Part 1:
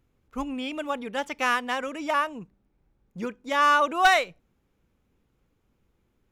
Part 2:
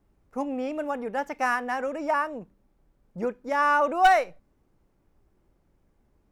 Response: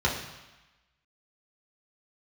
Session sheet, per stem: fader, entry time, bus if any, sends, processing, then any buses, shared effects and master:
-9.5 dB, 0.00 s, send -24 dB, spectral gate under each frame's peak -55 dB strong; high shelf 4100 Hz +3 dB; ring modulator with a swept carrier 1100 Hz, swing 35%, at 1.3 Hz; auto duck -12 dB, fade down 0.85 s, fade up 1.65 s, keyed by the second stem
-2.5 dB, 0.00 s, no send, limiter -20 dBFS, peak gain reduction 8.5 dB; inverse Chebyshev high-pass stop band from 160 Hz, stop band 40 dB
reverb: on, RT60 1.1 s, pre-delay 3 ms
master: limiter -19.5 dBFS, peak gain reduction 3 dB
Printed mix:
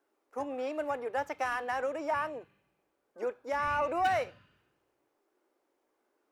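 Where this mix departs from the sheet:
stem 1 -9.5 dB -> -15.5 dB; master: missing limiter -19.5 dBFS, peak gain reduction 3 dB

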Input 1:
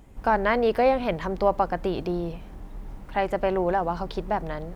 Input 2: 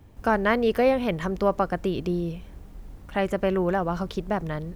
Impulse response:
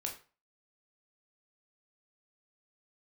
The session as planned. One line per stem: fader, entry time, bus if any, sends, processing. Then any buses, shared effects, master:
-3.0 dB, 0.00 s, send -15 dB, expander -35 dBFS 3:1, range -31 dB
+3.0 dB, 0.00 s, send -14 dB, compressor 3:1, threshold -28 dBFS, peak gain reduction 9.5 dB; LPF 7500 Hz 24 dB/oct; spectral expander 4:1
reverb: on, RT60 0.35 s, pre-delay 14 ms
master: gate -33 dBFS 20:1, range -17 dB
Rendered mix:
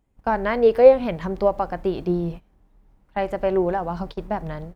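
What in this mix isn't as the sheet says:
stem 1: missing expander -35 dBFS 3:1, range -31 dB; stem 2 +3.0 dB -> +9.5 dB

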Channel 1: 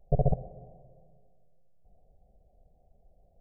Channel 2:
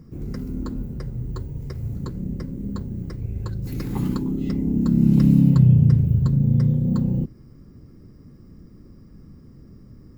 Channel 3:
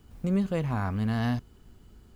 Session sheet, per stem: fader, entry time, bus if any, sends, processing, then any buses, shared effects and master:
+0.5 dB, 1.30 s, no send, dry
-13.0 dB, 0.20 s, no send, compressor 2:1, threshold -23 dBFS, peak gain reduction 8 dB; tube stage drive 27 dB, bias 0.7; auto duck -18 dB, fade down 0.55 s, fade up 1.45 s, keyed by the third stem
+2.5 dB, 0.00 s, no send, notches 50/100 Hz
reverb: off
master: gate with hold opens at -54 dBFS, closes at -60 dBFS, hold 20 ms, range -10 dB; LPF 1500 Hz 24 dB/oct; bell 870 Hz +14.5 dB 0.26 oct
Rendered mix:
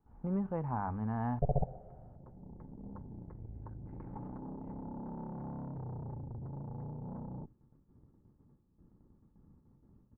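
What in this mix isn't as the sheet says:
stem 1 +0.5 dB -> -6.5 dB; stem 3 +2.5 dB -> -8.0 dB

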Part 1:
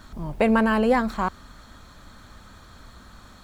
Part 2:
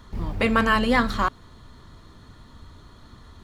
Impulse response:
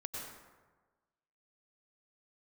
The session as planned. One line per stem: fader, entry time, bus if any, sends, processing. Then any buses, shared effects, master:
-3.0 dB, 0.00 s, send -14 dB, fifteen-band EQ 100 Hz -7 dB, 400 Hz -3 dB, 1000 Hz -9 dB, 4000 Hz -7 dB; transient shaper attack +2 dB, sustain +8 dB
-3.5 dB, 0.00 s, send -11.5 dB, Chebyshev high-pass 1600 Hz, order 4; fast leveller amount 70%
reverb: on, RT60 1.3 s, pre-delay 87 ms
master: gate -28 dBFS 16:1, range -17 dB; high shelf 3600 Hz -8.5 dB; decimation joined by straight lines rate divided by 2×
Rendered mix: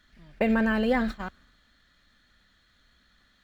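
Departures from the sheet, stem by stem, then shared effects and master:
stem 1: send off; stem 2 -3.5 dB -> -14.0 dB

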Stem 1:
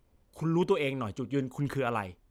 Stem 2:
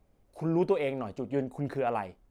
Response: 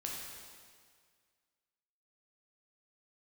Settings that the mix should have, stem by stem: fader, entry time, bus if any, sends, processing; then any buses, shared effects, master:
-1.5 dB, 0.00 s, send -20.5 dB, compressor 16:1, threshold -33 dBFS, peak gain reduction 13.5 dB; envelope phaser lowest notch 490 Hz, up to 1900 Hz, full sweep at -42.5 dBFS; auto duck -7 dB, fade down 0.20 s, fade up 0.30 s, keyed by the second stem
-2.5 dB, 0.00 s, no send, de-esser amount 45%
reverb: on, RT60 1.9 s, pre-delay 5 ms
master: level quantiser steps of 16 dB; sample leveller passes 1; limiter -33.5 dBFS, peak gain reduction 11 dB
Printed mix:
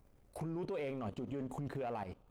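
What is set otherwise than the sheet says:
stem 1 -1.5 dB -> +5.5 dB; stem 2 -2.5 dB -> +4.0 dB

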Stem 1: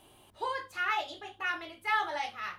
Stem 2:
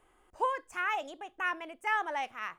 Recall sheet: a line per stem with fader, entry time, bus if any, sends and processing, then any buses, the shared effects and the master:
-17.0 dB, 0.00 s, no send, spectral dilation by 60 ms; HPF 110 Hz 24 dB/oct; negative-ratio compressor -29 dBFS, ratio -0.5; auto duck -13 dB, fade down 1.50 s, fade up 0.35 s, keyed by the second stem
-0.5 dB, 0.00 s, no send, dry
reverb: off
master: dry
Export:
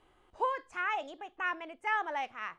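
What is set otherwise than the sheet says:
stem 1: missing HPF 110 Hz 24 dB/oct; master: extra air absorption 77 m

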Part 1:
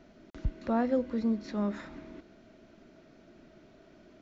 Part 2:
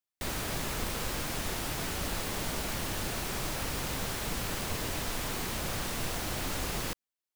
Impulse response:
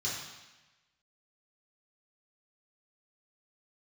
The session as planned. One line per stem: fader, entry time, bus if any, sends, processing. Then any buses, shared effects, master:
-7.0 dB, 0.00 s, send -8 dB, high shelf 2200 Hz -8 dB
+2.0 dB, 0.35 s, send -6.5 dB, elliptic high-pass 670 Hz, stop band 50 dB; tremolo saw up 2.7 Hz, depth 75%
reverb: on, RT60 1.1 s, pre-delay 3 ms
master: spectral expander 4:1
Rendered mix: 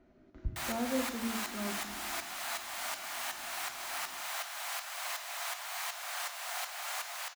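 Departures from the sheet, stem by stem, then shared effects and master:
stem 2: send -6.5 dB -> -12.5 dB; master: missing spectral expander 4:1

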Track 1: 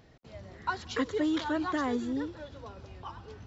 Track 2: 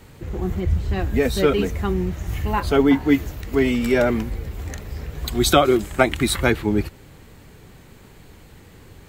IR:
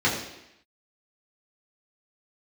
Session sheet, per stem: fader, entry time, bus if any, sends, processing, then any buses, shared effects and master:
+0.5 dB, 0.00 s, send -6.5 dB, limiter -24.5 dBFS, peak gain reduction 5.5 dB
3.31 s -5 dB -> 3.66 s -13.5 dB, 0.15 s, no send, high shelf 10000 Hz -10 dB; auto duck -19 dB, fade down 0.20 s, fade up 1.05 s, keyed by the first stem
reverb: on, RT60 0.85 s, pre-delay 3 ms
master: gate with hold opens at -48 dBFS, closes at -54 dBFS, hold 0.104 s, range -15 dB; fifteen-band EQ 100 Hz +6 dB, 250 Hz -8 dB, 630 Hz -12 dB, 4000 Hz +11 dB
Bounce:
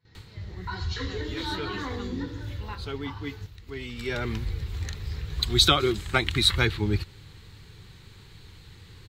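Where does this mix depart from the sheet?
stem 1 +0.5 dB -> -8.0 dB; stem 2 -5.0 dB -> +5.0 dB

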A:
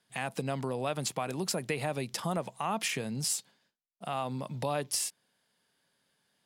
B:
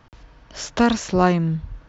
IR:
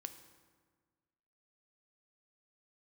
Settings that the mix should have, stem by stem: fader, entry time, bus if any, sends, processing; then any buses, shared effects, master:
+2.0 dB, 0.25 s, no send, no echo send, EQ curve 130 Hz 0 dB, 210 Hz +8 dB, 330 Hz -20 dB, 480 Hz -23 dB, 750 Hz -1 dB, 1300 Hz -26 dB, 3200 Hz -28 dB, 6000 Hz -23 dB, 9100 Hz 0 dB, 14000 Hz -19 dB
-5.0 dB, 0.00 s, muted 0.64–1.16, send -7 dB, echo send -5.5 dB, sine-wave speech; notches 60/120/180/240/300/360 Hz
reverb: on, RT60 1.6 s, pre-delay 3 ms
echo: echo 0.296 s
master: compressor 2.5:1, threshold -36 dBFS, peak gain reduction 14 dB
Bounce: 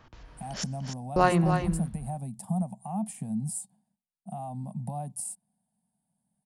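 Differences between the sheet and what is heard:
stem B: missing sine-wave speech; master: missing compressor 2.5:1, threshold -36 dBFS, peak gain reduction 14 dB

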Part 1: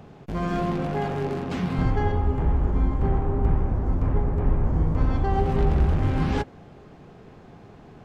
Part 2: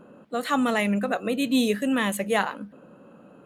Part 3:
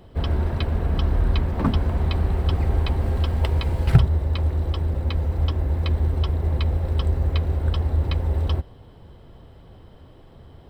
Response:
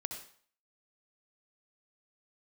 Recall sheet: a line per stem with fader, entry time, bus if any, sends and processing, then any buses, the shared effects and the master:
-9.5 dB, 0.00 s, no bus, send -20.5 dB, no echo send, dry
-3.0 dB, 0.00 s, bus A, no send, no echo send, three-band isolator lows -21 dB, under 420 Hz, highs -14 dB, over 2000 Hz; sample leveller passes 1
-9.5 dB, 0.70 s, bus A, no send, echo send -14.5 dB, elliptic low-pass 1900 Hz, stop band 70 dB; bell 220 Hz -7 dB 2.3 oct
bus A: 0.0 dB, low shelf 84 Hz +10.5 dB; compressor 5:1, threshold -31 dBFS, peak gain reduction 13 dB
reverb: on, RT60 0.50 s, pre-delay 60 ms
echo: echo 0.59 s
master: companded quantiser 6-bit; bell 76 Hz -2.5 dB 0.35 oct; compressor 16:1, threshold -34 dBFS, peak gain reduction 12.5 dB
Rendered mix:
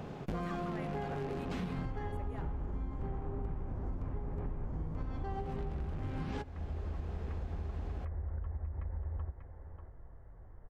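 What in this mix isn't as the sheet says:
stem 1 -9.5 dB -> +1.5 dB; master: missing companded quantiser 6-bit

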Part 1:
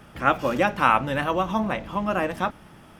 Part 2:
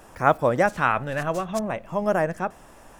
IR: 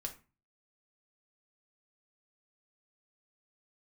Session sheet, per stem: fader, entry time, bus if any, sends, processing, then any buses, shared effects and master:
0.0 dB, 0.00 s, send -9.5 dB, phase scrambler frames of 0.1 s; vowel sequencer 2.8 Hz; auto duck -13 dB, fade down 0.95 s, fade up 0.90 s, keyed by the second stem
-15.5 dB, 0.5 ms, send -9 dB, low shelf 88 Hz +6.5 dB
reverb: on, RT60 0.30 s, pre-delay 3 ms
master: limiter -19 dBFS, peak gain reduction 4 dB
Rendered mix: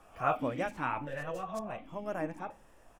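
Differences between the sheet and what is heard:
stem 2: send -9 dB -> -16.5 dB; master: missing limiter -19 dBFS, peak gain reduction 4 dB

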